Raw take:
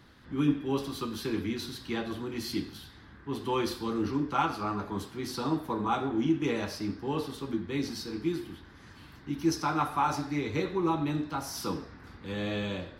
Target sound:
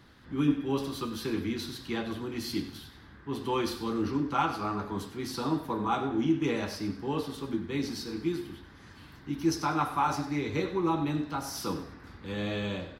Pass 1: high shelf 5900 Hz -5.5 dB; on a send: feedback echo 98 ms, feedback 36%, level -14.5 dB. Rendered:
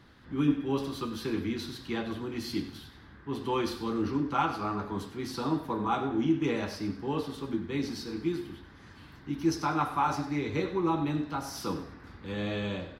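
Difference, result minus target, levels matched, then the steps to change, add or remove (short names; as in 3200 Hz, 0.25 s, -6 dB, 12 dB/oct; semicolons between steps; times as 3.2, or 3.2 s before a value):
8000 Hz band -3.0 dB
remove: high shelf 5900 Hz -5.5 dB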